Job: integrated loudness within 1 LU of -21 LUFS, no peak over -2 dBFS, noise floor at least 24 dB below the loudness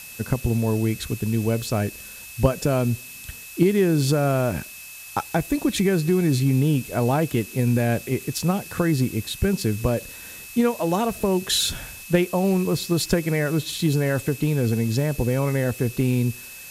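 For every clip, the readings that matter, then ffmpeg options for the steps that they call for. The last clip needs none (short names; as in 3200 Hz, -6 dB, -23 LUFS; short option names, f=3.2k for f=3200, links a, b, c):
steady tone 2600 Hz; tone level -42 dBFS; noise floor -40 dBFS; noise floor target -47 dBFS; loudness -23.0 LUFS; peak -6.0 dBFS; loudness target -21.0 LUFS
-> -af "bandreject=f=2.6k:w=30"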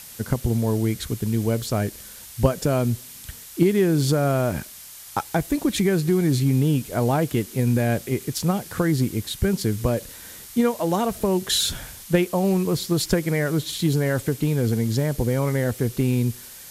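steady tone none; noise floor -42 dBFS; noise floor target -47 dBFS
-> -af "afftdn=nr=6:nf=-42"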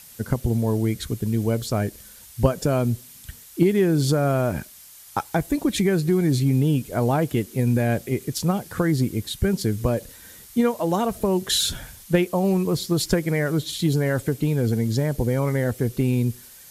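noise floor -46 dBFS; noise floor target -47 dBFS
-> -af "afftdn=nr=6:nf=-46"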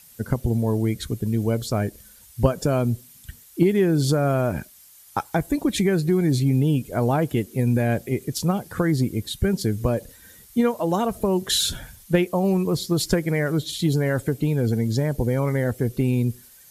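noise floor -50 dBFS; loudness -23.0 LUFS; peak -6.0 dBFS; loudness target -21.0 LUFS
-> -af "volume=2dB"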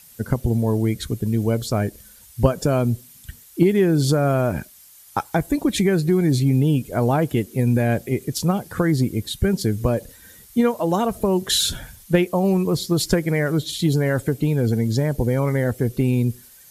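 loudness -21.0 LUFS; peak -4.0 dBFS; noise floor -48 dBFS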